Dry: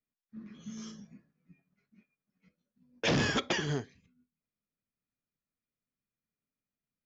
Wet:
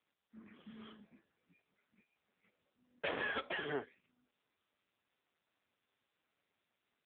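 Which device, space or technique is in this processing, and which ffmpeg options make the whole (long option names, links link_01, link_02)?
voicemail: -af "highpass=450,lowpass=3000,equalizer=frequency=80:width=5.7:gain=5,acompressor=threshold=-34dB:ratio=8,volume=3dB" -ar 8000 -c:a libopencore_amrnb -b:a 6700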